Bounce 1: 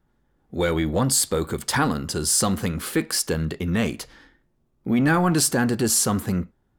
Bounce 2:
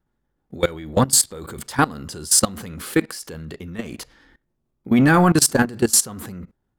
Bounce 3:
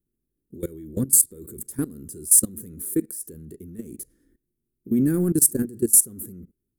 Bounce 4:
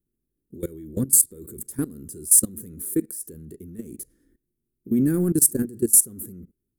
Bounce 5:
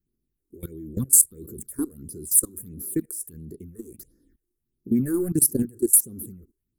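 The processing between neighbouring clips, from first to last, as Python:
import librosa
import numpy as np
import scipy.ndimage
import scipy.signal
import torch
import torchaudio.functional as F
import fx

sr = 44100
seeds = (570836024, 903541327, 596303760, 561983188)

y1 = fx.level_steps(x, sr, step_db=20)
y1 = y1 * librosa.db_to_amplitude(6.5)
y2 = fx.curve_eq(y1, sr, hz=(160.0, 380.0, 810.0, 1700.0, 2900.0, 4700.0, 10000.0), db=(0, 5, -26, -16, -21, -15, 13))
y2 = y2 * librosa.db_to_amplitude(-7.5)
y3 = y2
y4 = fx.phaser_stages(y3, sr, stages=6, low_hz=150.0, high_hz=2800.0, hz=1.5, feedback_pct=35)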